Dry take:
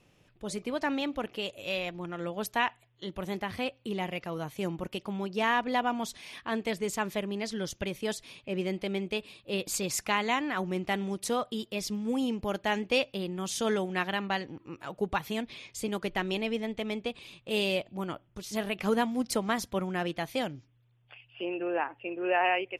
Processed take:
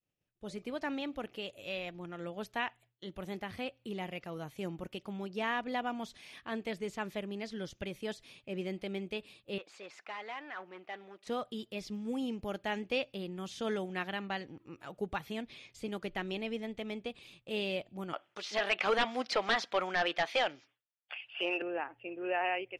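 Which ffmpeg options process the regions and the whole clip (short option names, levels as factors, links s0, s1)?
-filter_complex "[0:a]asettb=1/sr,asplit=3[s0][s1][s2];[s0]atrim=end=9.584[s3];[s1]atrim=start=9.58:end=11.27,asetpts=PTS-STARTPTS,afade=t=in:d=0.004:c=qsin,afade=t=out:st=1.686:d=0.004:c=qsin,asoftclip=type=hard:threshold=0.0398,highpass=610,lowpass=2400[s4];[s2]atrim=start=11.266[s5];[s3][s4]acrossfade=d=0.004:c1=hsin:c2=qsin[s6];[s6][s5]acrossfade=d=0.004:c1=qsin:c2=hsin,asettb=1/sr,asplit=3[s7][s8][s9];[s7]atrim=end=18.134[s10];[s8]atrim=start=18.13:end=21.62,asetpts=PTS-STARTPTS,afade=t=in:d=0.004:c=qsin,afade=t=out:st=3.486:d=0.004:c=qsin,highpass=730,lowpass=5400,aeval=exprs='0.168*sin(PI/2*3.55*val(0)/0.168)':c=same[s11];[s9]atrim=start=21.616[s12];[s10][s11]acrossfade=d=0.004:c1=hsin:c2=qsin[s13];[s13][s12]acrossfade=d=0.004:c1=qsin:c2=hsin,acrossover=split=4600[s14][s15];[s15]acompressor=threshold=0.00251:ratio=4:attack=1:release=60[s16];[s14][s16]amix=inputs=2:normalize=0,agate=range=0.0224:threshold=0.00282:ratio=3:detection=peak,equalizer=f=1000:t=o:w=0.25:g=-4.5,volume=0.501"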